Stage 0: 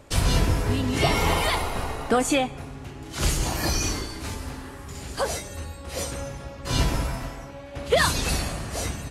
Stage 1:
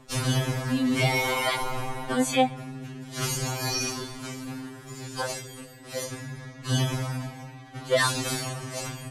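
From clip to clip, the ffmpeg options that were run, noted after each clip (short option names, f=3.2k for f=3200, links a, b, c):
-af "afftfilt=real='re*2.45*eq(mod(b,6),0)':imag='im*2.45*eq(mod(b,6),0)':win_size=2048:overlap=0.75"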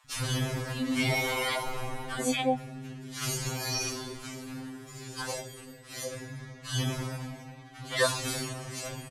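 -filter_complex "[0:a]acrossover=split=190|880[a][b][c];[a]adelay=40[d];[b]adelay=90[e];[d][e][c]amix=inputs=3:normalize=0,volume=-3dB"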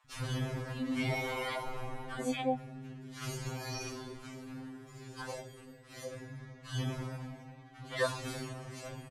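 -af "highshelf=f=3.2k:g=-10,volume=-4.5dB"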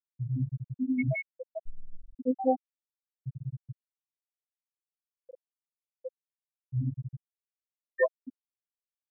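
-af "afftfilt=real='re*gte(hypot(re,im),0.126)':imag='im*gte(hypot(re,im),0.126)':win_size=1024:overlap=0.75,volume=7.5dB"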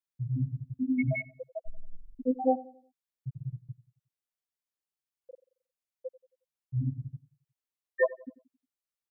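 -filter_complex "[0:a]asplit=2[a][b];[b]adelay=90,lowpass=f=1.2k:p=1,volume=-18dB,asplit=2[c][d];[d]adelay=90,lowpass=f=1.2k:p=1,volume=0.43,asplit=2[e][f];[f]adelay=90,lowpass=f=1.2k:p=1,volume=0.43,asplit=2[g][h];[h]adelay=90,lowpass=f=1.2k:p=1,volume=0.43[i];[a][c][e][g][i]amix=inputs=5:normalize=0"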